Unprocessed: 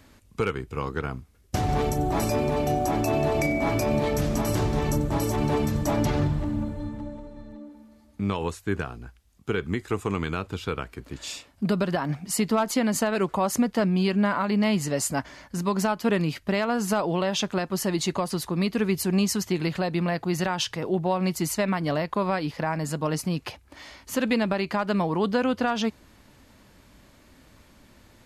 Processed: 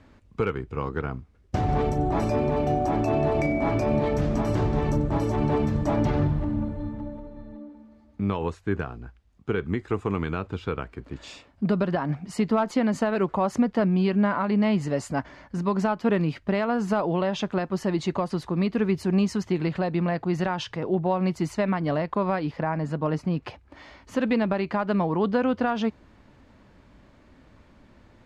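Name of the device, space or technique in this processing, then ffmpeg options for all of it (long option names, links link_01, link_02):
through cloth: -filter_complex "[0:a]asettb=1/sr,asplit=3[link_01][link_02][link_03];[link_01]atrim=end=22.594[link_04];[link_02]atrim=start=22.59:end=23.43,asetpts=PTS-STARTPTS,afade=type=in:duration=0.004:curve=qsin,afade=type=out:start_time=0.836:duration=0.004:curve=qsin,aemphasis=mode=reproduction:type=cd[link_05];[link_03]atrim=start=23.426[link_06];[link_04][link_05]acrossfade=duration=0.004:curve1=hsin:curve2=qsin[link_07];[link_07][link_06]acrossfade=duration=0.004:curve1=qsin:curve2=hsin,lowpass=8100,highshelf=frequency=3600:gain=-15.5,volume=1dB"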